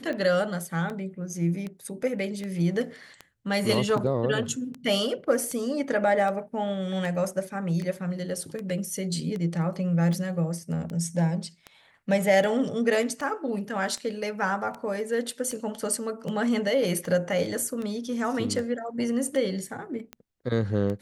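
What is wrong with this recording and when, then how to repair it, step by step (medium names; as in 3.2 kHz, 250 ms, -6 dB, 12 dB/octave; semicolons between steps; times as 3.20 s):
tick 78 rpm -22 dBFS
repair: de-click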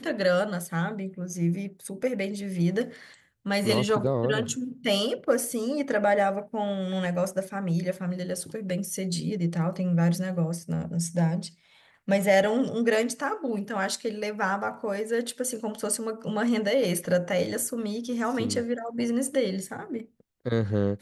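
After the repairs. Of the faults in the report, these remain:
nothing left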